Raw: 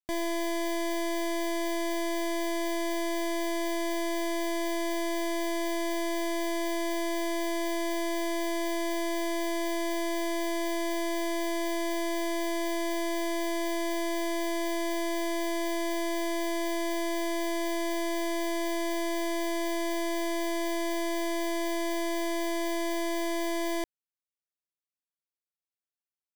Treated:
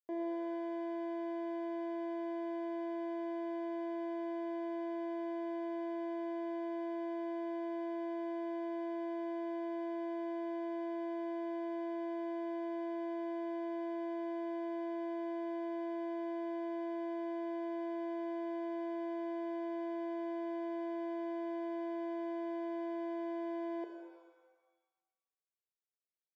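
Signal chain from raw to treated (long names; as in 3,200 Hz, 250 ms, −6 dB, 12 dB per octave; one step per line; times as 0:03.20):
four-pole ladder band-pass 490 Hz, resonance 50%
reverb with rising layers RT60 1.2 s, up +7 semitones, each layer −8 dB, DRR 4.5 dB
level +3 dB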